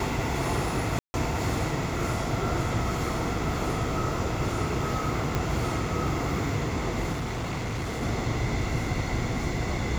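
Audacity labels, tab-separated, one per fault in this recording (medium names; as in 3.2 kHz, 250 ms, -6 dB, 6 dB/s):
0.990000	1.140000	dropout 150 ms
5.350000	5.350000	pop -13 dBFS
7.120000	8.030000	clipped -27.5 dBFS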